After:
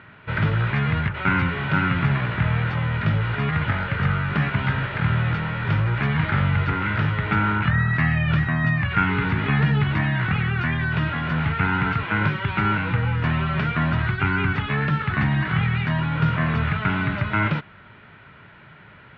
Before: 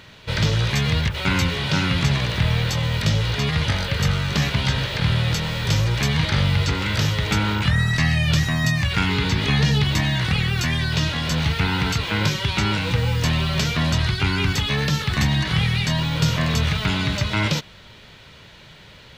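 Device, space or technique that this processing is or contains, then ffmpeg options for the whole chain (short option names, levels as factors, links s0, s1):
bass cabinet: -af "highpass=64,equalizer=f=65:t=q:w=4:g=-9,equalizer=f=510:t=q:w=4:g=-7,equalizer=f=1400:t=q:w=4:g=7,lowpass=f=2300:w=0.5412,lowpass=f=2300:w=1.3066"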